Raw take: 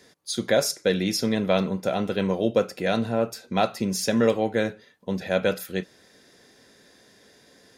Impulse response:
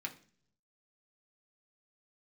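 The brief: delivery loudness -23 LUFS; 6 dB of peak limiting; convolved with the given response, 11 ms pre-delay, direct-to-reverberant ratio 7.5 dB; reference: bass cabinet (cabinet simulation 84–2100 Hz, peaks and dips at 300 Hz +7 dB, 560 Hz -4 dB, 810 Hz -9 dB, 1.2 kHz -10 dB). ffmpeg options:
-filter_complex "[0:a]alimiter=limit=0.211:level=0:latency=1,asplit=2[s0][s1];[1:a]atrim=start_sample=2205,adelay=11[s2];[s1][s2]afir=irnorm=-1:irlink=0,volume=0.422[s3];[s0][s3]amix=inputs=2:normalize=0,highpass=f=84:w=0.5412,highpass=f=84:w=1.3066,equalizer=f=300:t=q:w=4:g=7,equalizer=f=560:t=q:w=4:g=-4,equalizer=f=810:t=q:w=4:g=-9,equalizer=f=1200:t=q:w=4:g=-10,lowpass=f=2100:w=0.5412,lowpass=f=2100:w=1.3066,volume=1.58"

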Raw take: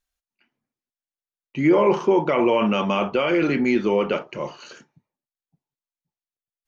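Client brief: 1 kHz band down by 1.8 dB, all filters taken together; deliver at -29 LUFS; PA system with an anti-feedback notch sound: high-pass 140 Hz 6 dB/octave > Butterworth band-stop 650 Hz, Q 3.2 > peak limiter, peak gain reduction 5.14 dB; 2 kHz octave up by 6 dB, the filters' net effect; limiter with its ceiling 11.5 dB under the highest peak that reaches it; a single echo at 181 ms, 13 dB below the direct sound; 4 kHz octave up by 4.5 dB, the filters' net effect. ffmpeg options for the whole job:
-af "equalizer=f=1000:t=o:g=-3.5,equalizer=f=2000:t=o:g=7,equalizer=f=4000:t=o:g=3,alimiter=limit=0.126:level=0:latency=1,highpass=f=140:p=1,asuperstop=centerf=650:order=8:qfactor=3.2,aecho=1:1:181:0.224,volume=1.19,alimiter=limit=0.1:level=0:latency=1"

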